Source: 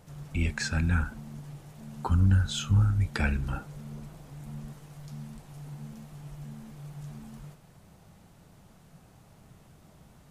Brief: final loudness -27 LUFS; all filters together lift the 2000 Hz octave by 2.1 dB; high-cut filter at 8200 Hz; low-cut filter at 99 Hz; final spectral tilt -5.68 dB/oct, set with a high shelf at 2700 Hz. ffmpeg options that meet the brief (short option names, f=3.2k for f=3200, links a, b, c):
-af "highpass=99,lowpass=8.2k,equalizer=f=2k:t=o:g=6.5,highshelf=f=2.7k:g=-8.5,volume=5.5dB"